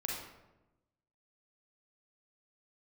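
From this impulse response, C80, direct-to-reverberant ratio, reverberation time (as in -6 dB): 4.5 dB, -2.5 dB, 1.0 s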